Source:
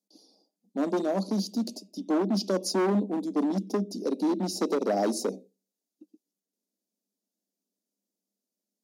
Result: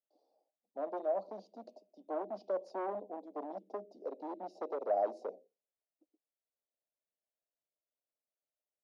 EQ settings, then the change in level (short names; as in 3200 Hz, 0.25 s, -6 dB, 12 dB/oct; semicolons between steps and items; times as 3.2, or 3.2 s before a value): ladder band-pass 740 Hz, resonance 50%; +2.0 dB